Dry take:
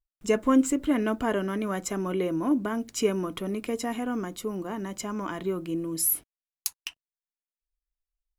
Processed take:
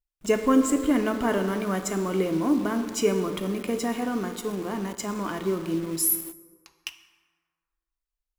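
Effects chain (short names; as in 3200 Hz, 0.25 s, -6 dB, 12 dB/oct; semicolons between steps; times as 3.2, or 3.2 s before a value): 6.15–6.82 tape spacing loss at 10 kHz 39 dB; reverb RT60 1.7 s, pre-delay 13 ms, DRR 7 dB; in parallel at -6 dB: bit-crush 6-bit; on the sum: gain -2 dB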